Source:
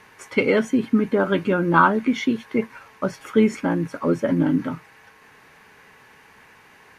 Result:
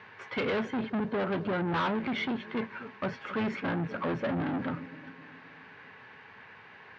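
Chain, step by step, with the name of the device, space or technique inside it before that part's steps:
0:00.90–0:01.94: parametric band 2,300 Hz −11 dB 0.97 octaves
analogue delay pedal into a guitar amplifier (bucket-brigade delay 263 ms, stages 1,024, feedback 52%, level −20.5 dB; tube saturation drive 27 dB, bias 0.4; loudspeaker in its box 100–3,900 Hz, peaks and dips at 100 Hz +6 dB, 300 Hz −5 dB, 1,600 Hz +3 dB)

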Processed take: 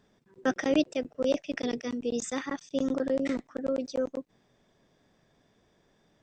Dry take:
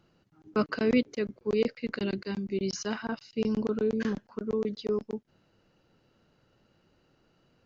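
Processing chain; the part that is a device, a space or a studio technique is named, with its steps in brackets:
nightcore (speed change +23%)

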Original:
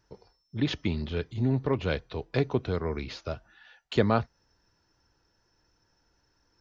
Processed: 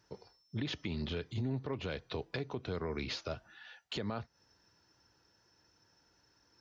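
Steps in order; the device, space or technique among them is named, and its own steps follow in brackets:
broadcast voice chain (high-pass filter 84 Hz 12 dB per octave; de-essing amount 85%; downward compressor 4 to 1, threshold −32 dBFS, peak gain reduction 12.5 dB; parametric band 4,300 Hz +3 dB 2.1 octaves; brickwall limiter −27.5 dBFS, peak gain reduction 8 dB)

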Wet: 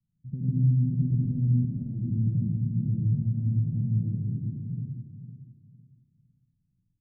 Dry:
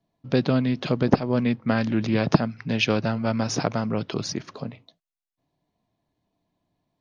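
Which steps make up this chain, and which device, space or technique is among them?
0:01.50–0:01.99: high-pass filter 250 Hz 12 dB per octave
repeating echo 507 ms, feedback 27%, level −11 dB
club heard from the street (brickwall limiter −14.5 dBFS, peak gain reduction 11 dB; low-pass filter 160 Hz 24 dB per octave; convolution reverb RT60 1.0 s, pre-delay 73 ms, DRR −6 dB)

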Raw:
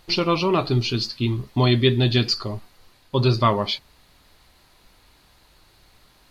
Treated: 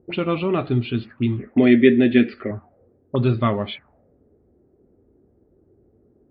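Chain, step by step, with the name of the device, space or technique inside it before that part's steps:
envelope filter bass rig (envelope-controlled low-pass 380–3,700 Hz up, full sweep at −19.5 dBFS; loudspeaker in its box 69–2,100 Hz, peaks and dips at 88 Hz +5 dB, 240 Hz +6 dB, 990 Hz −10 dB)
0:01.39–0:02.51: octave-band graphic EQ 125/250/500/1,000/2,000/4,000 Hz −12/+7/+8/−11/+12/−7 dB
level −1 dB

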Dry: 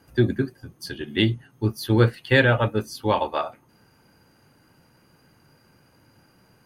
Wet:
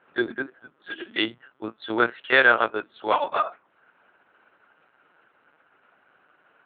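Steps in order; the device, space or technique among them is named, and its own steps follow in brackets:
talking toy (linear-prediction vocoder at 8 kHz pitch kept; high-pass filter 440 Hz 12 dB per octave; parametric band 1,400 Hz +8.5 dB 0.48 octaves)

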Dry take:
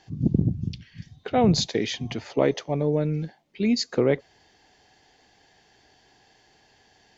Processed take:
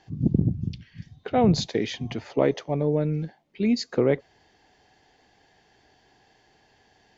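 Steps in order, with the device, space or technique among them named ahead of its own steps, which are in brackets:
behind a face mask (high-shelf EQ 3,400 Hz −7 dB)

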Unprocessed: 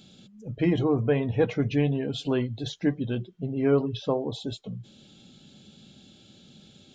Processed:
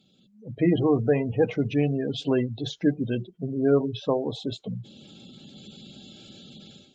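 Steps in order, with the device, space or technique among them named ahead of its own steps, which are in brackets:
noise-suppressed video call (high-pass filter 130 Hz 6 dB per octave; gate on every frequency bin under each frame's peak −25 dB strong; automatic gain control gain up to 16 dB; level −8.5 dB; Opus 32 kbit/s 48,000 Hz)

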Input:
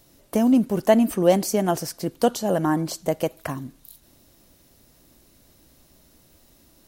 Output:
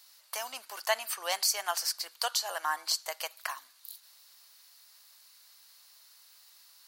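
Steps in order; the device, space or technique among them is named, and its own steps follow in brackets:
headphones lying on a table (high-pass filter 1,000 Hz 24 dB per octave; parametric band 4,500 Hz +9.5 dB 0.32 octaves)

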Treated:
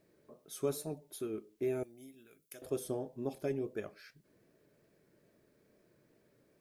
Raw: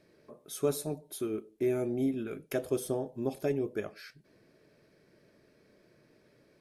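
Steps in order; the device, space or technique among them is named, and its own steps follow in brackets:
plain cassette with noise reduction switched in (one half of a high-frequency compander decoder only; tape wow and flutter; white noise bed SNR 42 dB)
0:01.83–0:02.62: first-order pre-emphasis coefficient 0.9
level −5 dB

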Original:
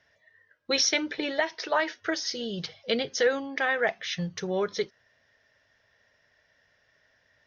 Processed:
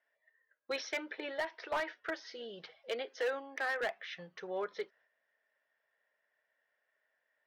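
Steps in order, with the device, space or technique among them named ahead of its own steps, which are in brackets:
walkie-talkie (band-pass filter 470–2,300 Hz; hard clipping −23 dBFS, distortion −12 dB; noise gate −60 dBFS, range −6 dB)
0:02.89–0:03.81: Butterworth high-pass 250 Hz
level −6 dB

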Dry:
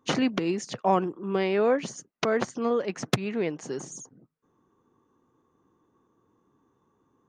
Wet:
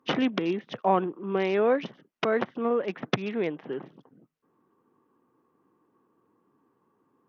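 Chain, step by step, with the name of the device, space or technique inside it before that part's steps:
Bluetooth headset (high-pass filter 160 Hz 12 dB per octave; downsampling to 8,000 Hz; SBC 64 kbit/s 48,000 Hz)

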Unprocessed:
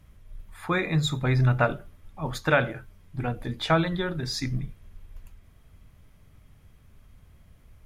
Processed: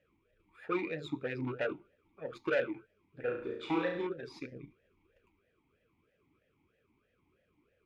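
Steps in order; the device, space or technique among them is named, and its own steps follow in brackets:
talk box (tube saturation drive 23 dB, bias 0.75; formant filter swept between two vowels e-u 3.1 Hz)
0:03.20–0:04.07: flutter between parallel walls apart 6 metres, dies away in 0.58 s
level +7.5 dB

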